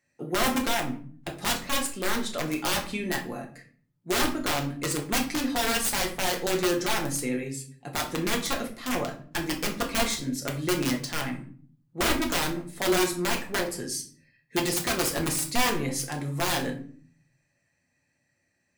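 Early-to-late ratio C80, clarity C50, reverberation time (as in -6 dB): 14.5 dB, 10.0 dB, 0.45 s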